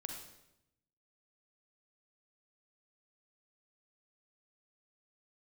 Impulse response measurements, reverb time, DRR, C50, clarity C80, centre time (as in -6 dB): 0.85 s, 2.5 dB, 3.5 dB, 6.5 dB, 37 ms